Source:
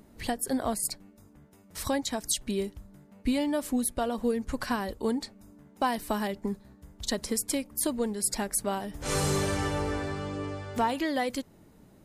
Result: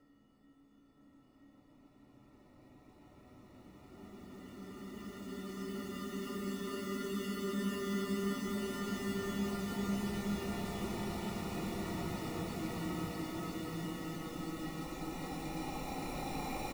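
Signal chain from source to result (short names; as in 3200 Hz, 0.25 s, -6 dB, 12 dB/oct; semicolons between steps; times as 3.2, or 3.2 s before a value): spectral contrast lowered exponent 0.56; low-pass opened by the level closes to 2500 Hz, open at -25 dBFS; spectral gate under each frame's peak -10 dB strong; in parallel at -1.5 dB: level quantiser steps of 19 dB; on the sum: varispeed -28%; vowel filter i; added noise pink -79 dBFS; sample-rate reducer 1600 Hz, jitter 0%; Paulstretch 17×, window 0.50 s, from 2.23; on a send: echo 0.972 s -3 dB; on the sum: mismatched tape noise reduction decoder only; gain +5.5 dB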